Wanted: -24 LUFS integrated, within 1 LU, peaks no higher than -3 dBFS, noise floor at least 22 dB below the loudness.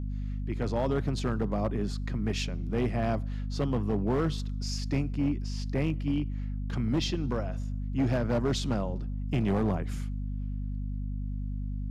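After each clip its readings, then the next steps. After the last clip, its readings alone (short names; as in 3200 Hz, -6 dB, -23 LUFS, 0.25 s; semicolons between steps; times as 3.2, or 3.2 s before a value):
clipped 2.1%; flat tops at -21.5 dBFS; hum 50 Hz; harmonics up to 250 Hz; hum level -31 dBFS; loudness -31.5 LUFS; peak -21.5 dBFS; loudness target -24.0 LUFS
-> clip repair -21.5 dBFS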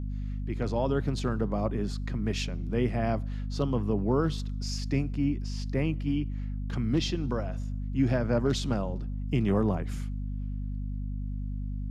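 clipped 0.0%; hum 50 Hz; harmonics up to 250 Hz; hum level -31 dBFS
-> notches 50/100/150/200/250 Hz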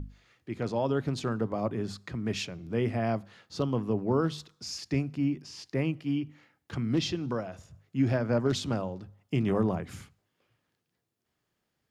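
hum none; loudness -31.0 LUFS; peak -14.5 dBFS; loudness target -24.0 LUFS
-> gain +7 dB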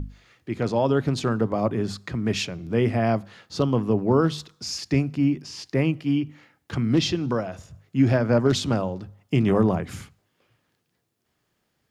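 loudness -24.0 LUFS; peak -7.5 dBFS; noise floor -74 dBFS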